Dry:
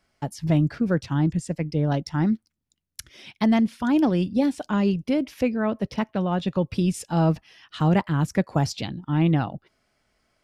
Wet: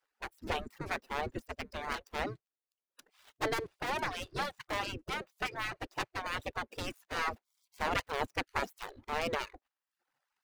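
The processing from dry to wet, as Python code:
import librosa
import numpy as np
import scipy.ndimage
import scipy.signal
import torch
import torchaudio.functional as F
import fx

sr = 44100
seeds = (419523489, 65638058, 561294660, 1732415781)

y = scipy.ndimage.median_filter(x, 41, mode='constant')
y = fx.spec_gate(y, sr, threshold_db=-20, keep='weak')
y = fx.dereverb_blind(y, sr, rt60_s=0.58)
y = y * 10.0 ** (4.5 / 20.0)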